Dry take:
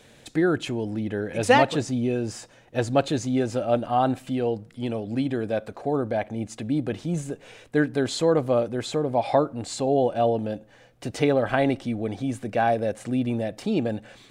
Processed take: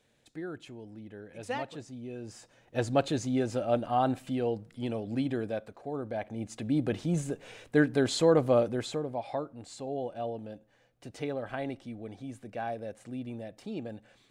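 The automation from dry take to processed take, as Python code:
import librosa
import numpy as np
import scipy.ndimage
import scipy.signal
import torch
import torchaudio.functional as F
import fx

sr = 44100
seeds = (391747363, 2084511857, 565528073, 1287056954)

y = fx.gain(x, sr, db=fx.line((2.0, -17.5), (2.79, -5.0), (5.39, -5.0), (5.8, -12.5), (6.85, -2.0), (8.69, -2.0), (9.26, -13.5)))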